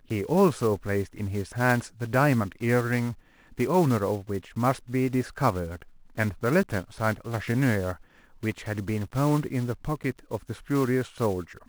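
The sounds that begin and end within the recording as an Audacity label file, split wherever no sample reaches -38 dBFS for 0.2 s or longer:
3.580000	5.820000	sound
6.170000	7.940000	sound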